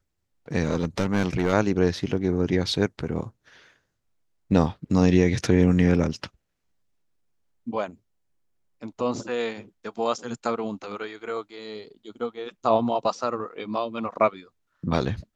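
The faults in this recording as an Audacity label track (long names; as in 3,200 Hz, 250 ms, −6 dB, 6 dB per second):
0.630000	1.540000	clipping −17 dBFS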